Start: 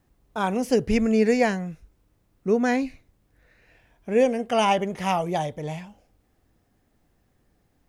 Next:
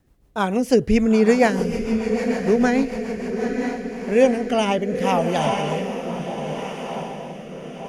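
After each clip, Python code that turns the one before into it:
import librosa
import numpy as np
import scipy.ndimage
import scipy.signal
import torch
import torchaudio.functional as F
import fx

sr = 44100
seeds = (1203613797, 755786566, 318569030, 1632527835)

y = fx.echo_diffused(x, sr, ms=910, feedback_pct=58, wet_db=-6.0)
y = fx.rotary_switch(y, sr, hz=6.7, then_hz=0.75, switch_at_s=3.14)
y = y * 10.0 ** (5.5 / 20.0)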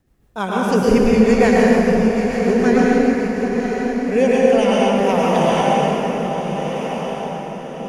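y = fx.rev_plate(x, sr, seeds[0], rt60_s=2.9, hf_ratio=0.55, predelay_ms=95, drr_db=-5.5)
y = y * 10.0 ** (-2.0 / 20.0)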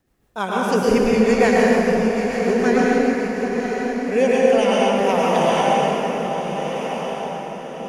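y = fx.low_shelf(x, sr, hz=210.0, db=-9.0)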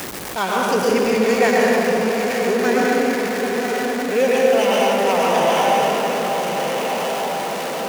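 y = x + 0.5 * 10.0 ** (-21.0 / 20.0) * np.sign(x)
y = fx.highpass(y, sr, hz=340.0, slope=6)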